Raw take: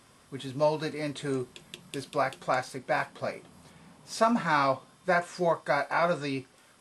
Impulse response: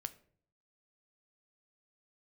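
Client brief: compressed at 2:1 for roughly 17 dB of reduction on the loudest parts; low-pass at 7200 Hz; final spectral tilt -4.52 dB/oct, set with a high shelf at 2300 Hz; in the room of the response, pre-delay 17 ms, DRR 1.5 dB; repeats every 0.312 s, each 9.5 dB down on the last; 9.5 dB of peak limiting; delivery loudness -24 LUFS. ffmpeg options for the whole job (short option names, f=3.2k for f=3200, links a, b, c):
-filter_complex "[0:a]lowpass=7.2k,highshelf=f=2.3k:g=-6,acompressor=threshold=-53dB:ratio=2,alimiter=level_in=13dB:limit=-24dB:level=0:latency=1,volume=-13dB,aecho=1:1:312|624|936|1248:0.335|0.111|0.0365|0.012,asplit=2[a][b];[1:a]atrim=start_sample=2205,adelay=17[c];[b][c]afir=irnorm=-1:irlink=0,volume=1dB[d];[a][d]amix=inputs=2:normalize=0,volume=22.5dB"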